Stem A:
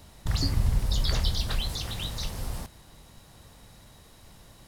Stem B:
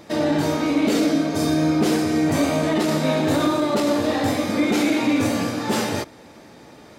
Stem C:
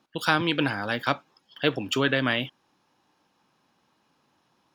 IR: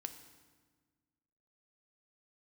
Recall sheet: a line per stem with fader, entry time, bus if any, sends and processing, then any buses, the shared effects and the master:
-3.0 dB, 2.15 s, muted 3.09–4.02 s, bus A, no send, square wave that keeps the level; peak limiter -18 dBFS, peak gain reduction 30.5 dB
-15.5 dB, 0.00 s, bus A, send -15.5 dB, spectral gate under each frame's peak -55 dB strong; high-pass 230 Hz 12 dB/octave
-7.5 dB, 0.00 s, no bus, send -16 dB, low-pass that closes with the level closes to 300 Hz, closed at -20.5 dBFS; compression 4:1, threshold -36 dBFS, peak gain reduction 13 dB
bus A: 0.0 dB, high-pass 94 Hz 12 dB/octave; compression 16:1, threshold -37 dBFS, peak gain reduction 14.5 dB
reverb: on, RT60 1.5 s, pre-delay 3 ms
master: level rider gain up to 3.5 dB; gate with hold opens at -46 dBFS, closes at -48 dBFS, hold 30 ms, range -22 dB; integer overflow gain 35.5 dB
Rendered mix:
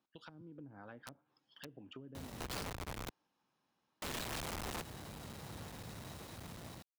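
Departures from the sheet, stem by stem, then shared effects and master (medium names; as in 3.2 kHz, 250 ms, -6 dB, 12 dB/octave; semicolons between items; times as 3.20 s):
stem B: muted; stem C -7.5 dB -> -18.0 dB; master: missing gate with hold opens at -46 dBFS, closes at -48 dBFS, hold 30 ms, range -22 dB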